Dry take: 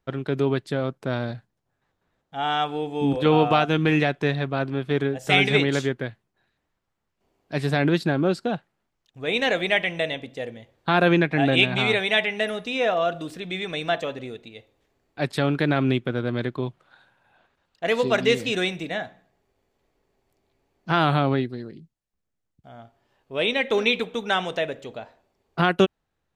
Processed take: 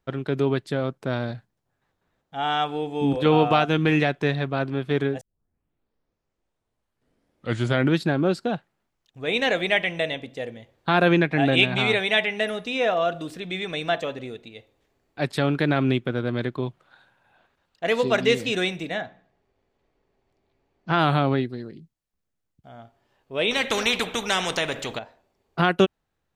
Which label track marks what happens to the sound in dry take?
5.210000	5.210000	tape start 2.85 s
19.010000	20.990000	air absorption 94 m
23.510000	24.990000	spectral compressor 2:1

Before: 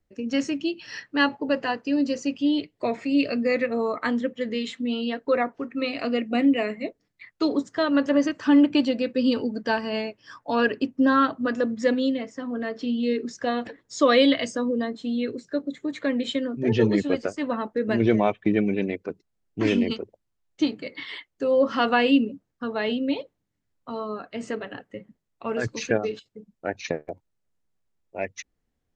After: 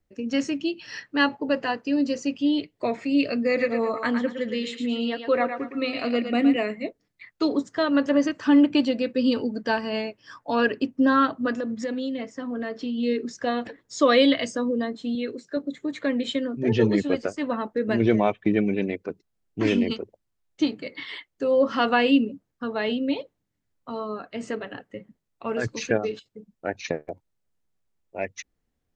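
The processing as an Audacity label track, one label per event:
3.460000	6.560000	thinning echo 0.113 s, feedback 34%, level -6.5 dB
11.530000	12.980000	compressor, threshold -25 dBFS
15.150000	15.570000	HPF 250 Hz 6 dB/oct

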